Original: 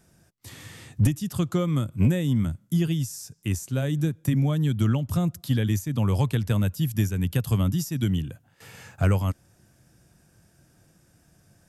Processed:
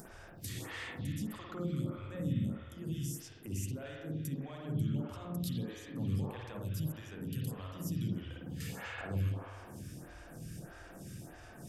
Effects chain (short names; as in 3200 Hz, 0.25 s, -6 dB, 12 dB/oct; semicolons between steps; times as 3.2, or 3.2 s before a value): compressor, threshold -35 dBFS, peak gain reduction 17.5 dB; limiter -33.5 dBFS, peak gain reduction 9.5 dB; upward compressor, threshold -42 dBFS; spring tank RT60 2 s, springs 51 ms, chirp 40 ms, DRR -3.5 dB; photocell phaser 1.6 Hz; gain +2 dB